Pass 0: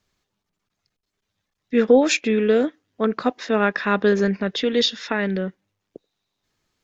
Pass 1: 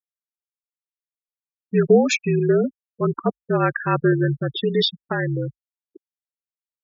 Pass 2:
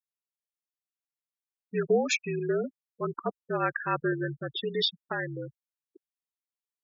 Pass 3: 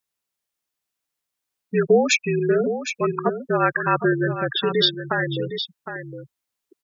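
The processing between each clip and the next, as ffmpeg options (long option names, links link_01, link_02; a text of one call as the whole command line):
ffmpeg -i in.wav -af "afftfilt=real='re*gte(hypot(re,im),0.112)':imag='im*gte(hypot(re,im),0.112)':win_size=1024:overlap=0.75,afreqshift=-52" out.wav
ffmpeg -i in.wav -af "lowshelf=frequency=330:gain=-11,volume=-5.5dB" out.wav
ffmpeg -i in.wav -filter_complex "[0:a]asplit=2[link_01][link_02];[link_02]acompressor=threshold=-36dB:ratio=6,volume=-3dB[link_03];[link_01][link_03]amix=inputs=2:normalize=0,aecho=1:1:761:0.335,volume=7dB" out.wav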